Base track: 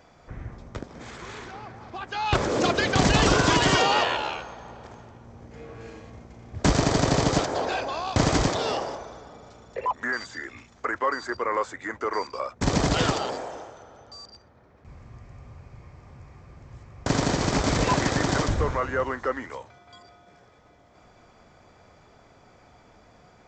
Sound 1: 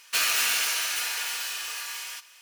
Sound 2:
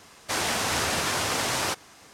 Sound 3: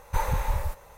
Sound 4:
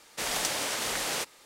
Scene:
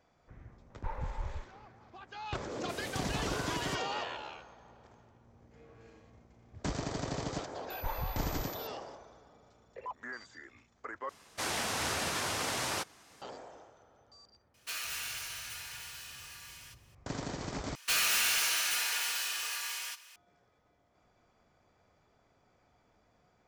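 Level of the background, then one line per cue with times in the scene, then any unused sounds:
base track -15 dB
0.70 s: add 3 -11 dB + distance through air 430 m
2.51 s: add 4 -16.5 dB
7.70 s: add 3 -11 dB + class-D stage that switches slowly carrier 12 kHz
11.09 s: replace with 2 -7.5 dB
14.54 s: add 1 -14.5 dB
17.75 s: replace with 1 -2.5 dB + overload inside the chain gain 22.5 dB

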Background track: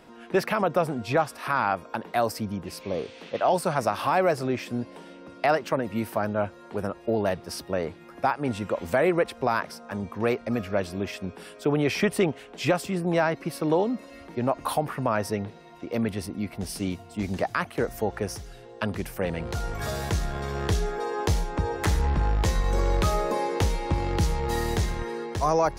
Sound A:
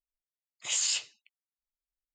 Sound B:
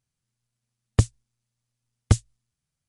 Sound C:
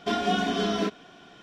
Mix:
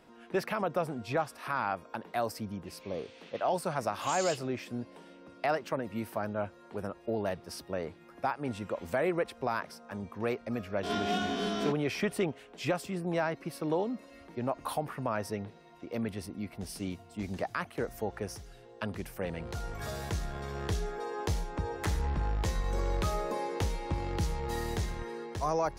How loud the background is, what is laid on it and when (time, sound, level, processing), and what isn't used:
background track -7.5 dB
3.37 s: add A -10.5 dB
10.83 s: add C -7.5 dB + reverse spectral sustain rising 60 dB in 0.55 s
not used: B

